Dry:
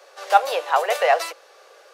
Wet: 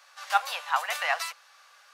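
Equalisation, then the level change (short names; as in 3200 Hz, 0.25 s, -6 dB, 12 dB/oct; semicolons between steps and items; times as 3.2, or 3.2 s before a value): HPF 970 Hz 24 dB/oct; -3.0 dB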